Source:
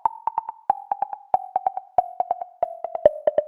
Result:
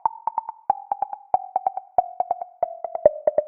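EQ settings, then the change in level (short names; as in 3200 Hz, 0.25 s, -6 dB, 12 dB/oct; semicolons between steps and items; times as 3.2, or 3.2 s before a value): Chebyshev low-pass 2400 Hz, order 6; notch 1700 Hz, Q 5.5; 0.0 dB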